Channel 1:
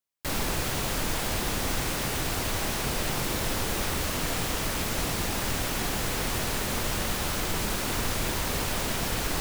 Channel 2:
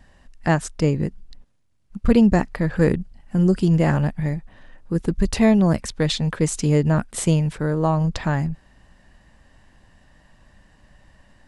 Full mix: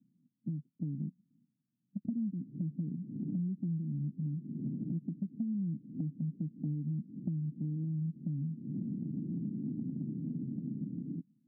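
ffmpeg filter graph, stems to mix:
ffmpeg -i stem1.wav -i stem2.wav -filter_complex "[0:a]adelay=1800,volume=1dB[link_01];[1:a]alimiter=limit=-9.5dB:level=0:latency=1:release=296,volume=-7.5dB,asplit=2[link_02][link_03];[link_03]apad=whole_len=494067[link_04];[link_01][link_04]sidechaincompress=threshold=-42dB:ratio=8:attack=37:release=333[link_05];[link_05][link_02]amix=inputs=2:normalize=0,dynaudnorm=framelen=190:gausssize=13:maxgain=6dB,asuperpass=centerf=200:order=8:qfactor=1.3,acompressor=threshold=-34dB:ratio=6" out.wav

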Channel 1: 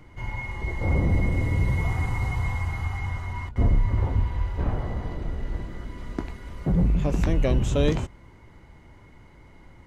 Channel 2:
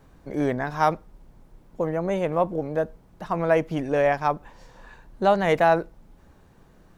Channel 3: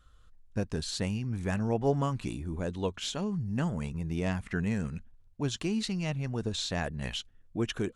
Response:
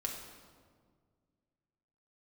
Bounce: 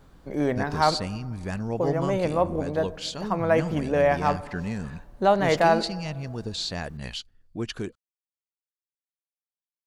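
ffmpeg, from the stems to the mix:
-filter_complex "[1:a]volume=-2.5dB,asplit=2[link_01][link_02];[link_02]volume=-11dB[link_03];[2:a]equalizer=frequency=4600:width=6.1:gain=12.5,volume=-0.5dB[link_04];[3:a]atrim=start_sample=2205[link_05];[link_03][link_05]afir=irnorm=-1:irlink=0[link_06];[link_01][link_04][link_06]amix=inputs=3:normalize=0"

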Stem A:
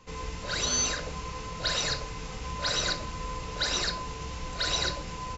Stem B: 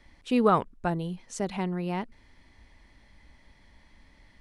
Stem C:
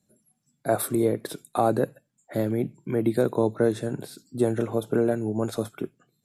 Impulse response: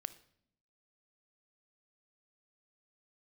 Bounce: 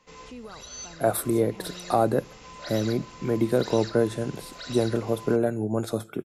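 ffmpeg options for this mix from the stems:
-filter_complex "[0:a]volume=-8dB,asplit=2[link_01][link_02];[link_02]volume=-6.5dB[link_03];[1:a]volume=-13dB,asplit=2[link_04][link_05];[2:a]adelay=350,volume=-2dB,asplit=2[link_06][link_07];[link_07]volume=-7.5dB[link_08];[link_05]apad=whole_len=236845[link_09];[link_01][link_09]sidechaincompress=threshold=-50dB:ratio=8:attack=16:release=482[link_10];[link_10][link_04]amix=inputs=2:normalize=0,highpass=140,alimiter=level_in=10dB:limit=-24dB:level=0:latency=1:release=186,volume=-10dB,volume=0dB[link_11];[3:a]atrim=start_sample=2205[link_12];[link_03][link_08]amix=inputs=2:normalize=0[link_13];[link_13][link_12]afir=irnorm=-1:irlink=0[link_14];[link_06][link_11][link_14]amix=inputs=3:normalize=0"

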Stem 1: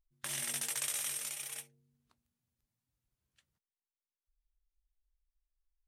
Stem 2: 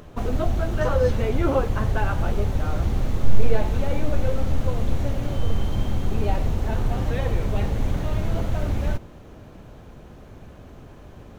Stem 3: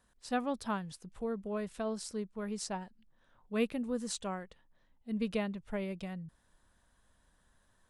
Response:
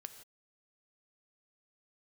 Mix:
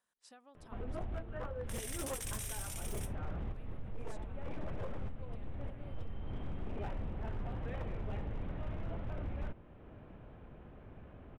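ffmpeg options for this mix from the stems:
-filter_complex "[0:a]adelay=1450,volume=0.5dB[link_01];[1:a]lowpass=frequency=2900:width=0.5412,lowpass=frequency=2900:width=1.3066,adelay=550,volume=-9.5dB[link_02];[2:a]acompressor=threshold=-40dB:ratio=16,volume=-11dB,asplit=2[link_03][link_04];[link_04]apad=whole_len=526145[link_05];[link_02][link_05]sidechaincompress=threshold=-59dB:ratio=10:attack=29:release=210[link_06];[link_01][link_03]amix=inputs=2:normalize=0,highpass=frequency=600:poles=1,alimiter=level_in=0.5dB:limit=-24dB:level=0:latency=1:release=448,volume=-0.5dB,volume=0dB[link_07];[link_06][link_07]amix=inputs=2:normalize=0,aeval=exprs='0.0447*(abs(mod(val(0)/0.0447+3,4)-2)-1)':channel_layout=same,equalizer=frequency=4300:width=7.8:gain=-4.5,alimiter=level_in=8.5dB:limit=-24dB:level=0:latency=1:release=424,volume=-8.5dB"

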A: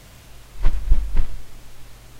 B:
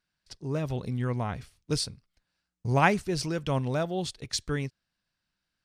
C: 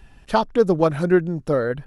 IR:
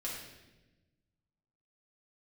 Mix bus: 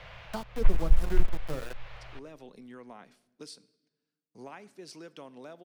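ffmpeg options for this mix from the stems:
-filter_complex "[0:a]firequalizer=gain_entry='entry(160,0);entry(230,-17);entry(520,7);entry(2400,9);entry(8300,-24)':delay=0.05:min_phase=1,volume=-5.5dB,asplit=2[link_01][link_02];[link_02]volume=-17dB[link_03];[1:a]highpass=frequency=220:width=0.5412,highpass=frequency=220:width=1.3066,acompressor=threshold=-30dB:ratio=6,adelay=1700,volume=-12dB,asplit=2[link_04][link_05];[link_05]volume=-17.5dB[link_06];[2:a]highshelf=frequency=4300:gain=11,bandreject=frequency=60:width_type=h:width=6,bandreject=frequency=120:width_type=h:width=6,bandreject=frequency=180:width_type=h:width=6,bandreject=frequency=240:width_type=h:width=6,bandreject=frequency=300:width_type=h:width=6,bandreject=frequency=360:width_type=h:width=6,bandreject=frequency=420:width_type=h:width=6,bandreject=frequency=480:width_type=h:width=6,bandreject=frequency=540:width_type=h:width=6,aeval=exprs='val(0)*gte(abs(val(0)),0.1)':channel_layout=same,volume=-12dB[link_07];[3:a]atrim=start_sample=2205[link_08];[link_03][link_06]amix=inputs=2:normalize=0[link_09];[link_09][link_08]afir=irnorm=-1:irlink=0[link_10];[link_01][link_04][link_07][link_10]amix=inputs=4:normalize=0,acrossover=split=330[link_11][link_12];[link_12]acompressor=threshold=-40dB:ratio=2.5[link_13];[link_11][link_13]amix=inputs=2:normalize=0"

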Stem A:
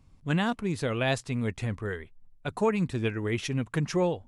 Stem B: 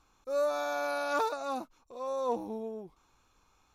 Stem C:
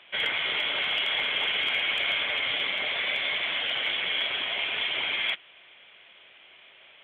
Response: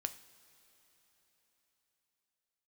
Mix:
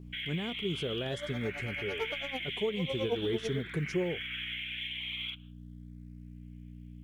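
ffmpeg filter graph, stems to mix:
-filter_complex "[0:a]volume=-6dB[link_01];[1:a]aeval=exprs='val(0)*pow(10,-23*(0.5-0.5*cos(2*PI*9*n/s))/20)':channel_layout=same,adelay=800,volume=-3dB,afade=type=in:start_time=1.83:duration=0.48:silence=0.375837[link_02];[2:a]highpass=frequency=1400:width=0.5412,highpass=frequency=1400:width=1.3066,agate=range=-33dB:threshold=-40dB:ratio=3:detection=peak,asplit=2[link_03][link_04];[link_04]afreqshift=0.44[link_05];[link_03][link_05]amix=inputs=2:normalize=1,volume=-3dB[link_06];[link_01][link_06]amix=inputs=2:normalize=0,aeval=exprs='val(0)+0.00398*(sin(2*PI*60*n/s)+sin(2*PI*2*60*n/s)/2+sin(2*PI*3*60*n/s)/3+sin(2*PI*4*60*n/s)/4+sin(2*PI*5*60*n/s)/5)':channel_layout=same,alimiter=level_in=4.5dB:limit=-24dB:level=0:latency=1:release=331,volume=-4.5dB,volume=0dB[link_07];[link_02][link_07]amix=inputs=2:normalize=0,acrusher=bits=9:mode=log:mix=0:aa=0.000001,equalizer=frequency=160:width_type=o:width=0.67:gain=7,equalizer=frequency=400:width_type=o:width=0.67:gain=12,equalizer=frequency=1000:width_type=o:width=0.67:gain=-4"

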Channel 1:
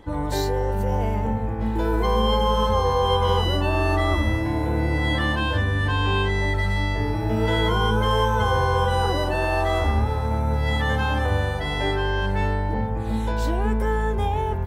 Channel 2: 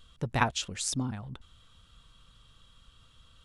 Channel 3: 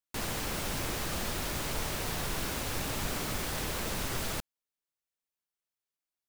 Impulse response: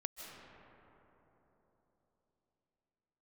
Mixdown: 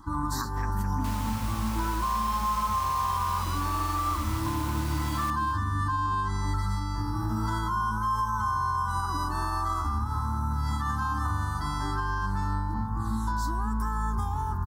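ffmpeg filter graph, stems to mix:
-filter_complex "[0:a]volume=-2dB[link_01];[1:a]lowpass=frequency=1800:width_type=q:width=4.9,equalizer=frequency=250:width=1.5:gain=13,volume=-11.5dB,asplit=2[link_02][link_03];[link_03]volume=-12dB[link_04];[2:a]highpass=570,adelay=900,volume=-5dB,asplit=2[link_05][link_06];[link_06]volume=-16.5dB[link_07];[link_01][link_02]amix=inputs=2:normalize=0,firequalizer=gain_entry='entry(310,0);entry(480,-27);entry(1100,15);entry(2300,-23);entry(4700,6)':delay=0.05:min_phase=1,alimiter=limit=-20dB:level=0:latency=1:release=221,volume=0dB[link_08];[link_04][link_07]amix=inputs=2:normalize=0,aecho=0:1:215|430|645|860|1075:1|0.36|0.13|0.0467|0.0168[link_09];[link_05][link_08][link_09]amix=inputs=3:normalize=0"

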